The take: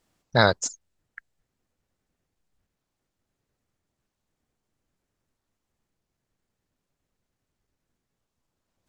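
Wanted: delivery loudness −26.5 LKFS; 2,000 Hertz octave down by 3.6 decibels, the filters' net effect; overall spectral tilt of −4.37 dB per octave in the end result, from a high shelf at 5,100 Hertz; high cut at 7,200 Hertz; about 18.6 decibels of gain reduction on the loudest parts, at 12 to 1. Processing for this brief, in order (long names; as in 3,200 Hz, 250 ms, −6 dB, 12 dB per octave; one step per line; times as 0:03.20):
low-pass filter 7,200 Hz
parametric band 2,000 Hz −4.5 dB
high-shelf EQ 5,100 Hz −6 dB
downward compressor 12 to 1, threshold −32 dBFS
level +16.5 dB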